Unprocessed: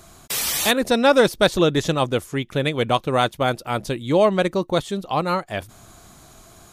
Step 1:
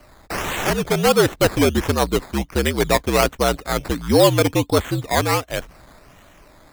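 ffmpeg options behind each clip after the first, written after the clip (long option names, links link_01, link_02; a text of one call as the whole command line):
ffmpeg -i in.wav -af "dynaudnorm=framelen=230:gausssize=13:maxgain=11.5dB,acrusher=samples=12:mix=1:aa=0.000001:lfo=1:lforange=7.2:lforate=1.4,afreqshift=-66,volume=-1.5dB" out.wav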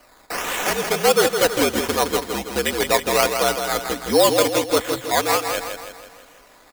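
ffmpeg -i in.wav -filter_complex "[0:a]bass=frequency=250:gain=-13,treble=frequency=4000:gain=3,aecho=1:1:4.1:0.31,asplit=2[link_01][link_02];[link_02]aecho=0:1:163|326|489|652|815|978:0.473|0.237|0.118|0.0591|0.0296|0.0148[link_03];[link_01][link_03]amix=inputs=2:normalize=0,volume=-1dB" out.wav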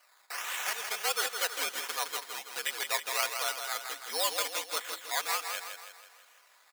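ffmpeg -i in.wav -af "highpass=1100,volume=-9dB" out.wav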